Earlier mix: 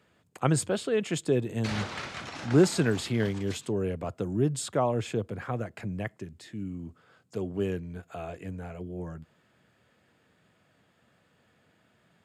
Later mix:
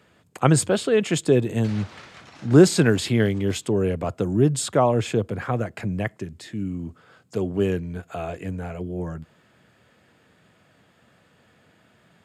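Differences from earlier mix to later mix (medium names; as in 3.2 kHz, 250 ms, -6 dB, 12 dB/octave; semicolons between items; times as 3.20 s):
speech +7.5 dB; background -7.0 dB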